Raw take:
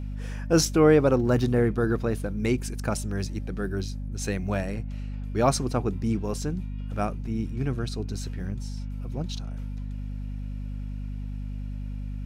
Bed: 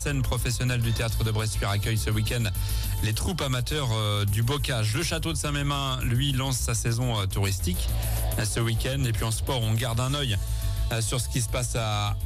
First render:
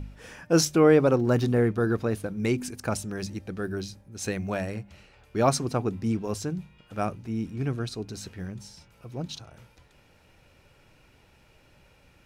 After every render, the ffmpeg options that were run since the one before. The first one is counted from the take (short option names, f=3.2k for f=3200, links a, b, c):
-af "bandreject=f=50:t=h:w=4,bandreject=f=100:t=h:w=4,bandreject=f=150:t=h:w=4,bandreject=f=200:t=h:w=4,bandreject=f=250:t=h:w=4"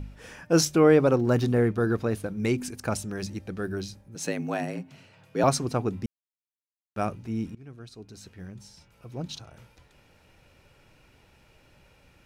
-filter_complex "[0:a]asettb=1/sr,asplit=3[a][b][c];[a]atrim=end=4.154[d];[b]atrim=start=4.15:end=5.44,asetpts=PTS-STARTPTS,afade=t=in:d=0.004:c=qsin,afade=t=out:st=1.286:d=0.004:c=qsin,afreqshift=64[e];[c]atrim=start=5.436[f];[d][e]acrossfade=d=0.004:c1=hsin:c2=qsin[g];[g][f]acrossfade=d=0.004:c1=qsin:c2=hsin,asplit=4[h][i][j][k];[h]atrim=end=6.06,asetpts=PTS-STARTPTS,afade=t=out:st=6.056:d=0.004:c=hsin[l];[i]atrim=start=6.06:end=6.96,asetpts=PTS-STARTPTS,volume=0[m];[j]atrim=start=6.96:end=7.55,asetpts=PTS-STARTPTS,afade=t=in:d=0.004:c=hsin,afade=t=out:st=0.586:d=0.004:c=hsin:silence=0.0841395[n];[k]atrim=start=7.55,asetpts=PTS-STARTPTS,afade=t=in:d=1.82:silence=0.0841395[o];[l][m][n][o]concat=n=4:v=0:a=1"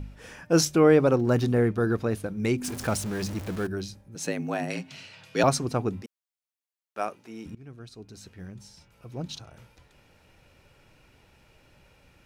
-filter_complex "[0:a]asettb=1/sr,asplit=3[a][b][c];[a]atrim=end=2.644[d];[b]atrim=start=2.64:end=3.67,asetpts=PTS-STARTPTS,afade=t=in:d=0.004:c=qsin,afade=t=out:st=1.026:d=0.004:c=qsin,aeval=exprs='val(0)+0.5*0.0211*sgn(val(0))':c=same[e];[c]atrim=start=3.666[f];[d][e]acrossfade=d=0.004:c1=hsin:c2=qsin[g];[g][f]acrossfade=d=0.004:c1=qsin:c2=hsin,asettb=1/sr,asplit=3[h][i][j];[h]atrim=end=4.704[k];[i]atrim=start=4.7:end=5.43,asetpts=PTS-STARTPTS,afade=t=in:d=0.004:c=qsin,afade=t=out:st=0.726:d=0.004:c=qsin,equalizer=f=4.3k:t=o:w=2.8:g=14[l];[j]atrim=start=5.426[m];[k][l]acrossfade=d=0.004:c1=hsin:c2=qsin[n];[n][m]acrossfade=d=0.004:c1=qsin:c2=hsin,asettb=1/sr,asplit=3[o][p][q];[o]atrim=end=6.024[r];[p]atrim=start=6.02:end=7.46,asetpts=PTS-STARTPTS,afade=t=in:d=0.004:c=qsin,afade=t=out:st=1.436:d=0.004:c=qsin,highpass=430[s];[q]atrim=start=7.456[t];[r][s]acrossfade=d=0.004:c1=hsin:c2=qsin[u];[u][t]acrossfade=d=0.004:c1=qsin:c2=hsin"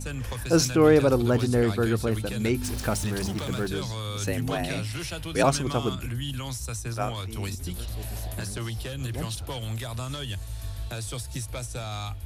-filter_complex "[1:a]volume=-7dB[a];[0:a][a]amix=inputs=2:normalize=0"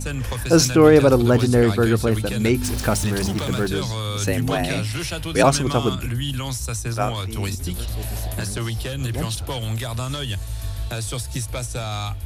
-af "volume=6.5dB,alimiter=limit=-3dB:level=0:latency=1"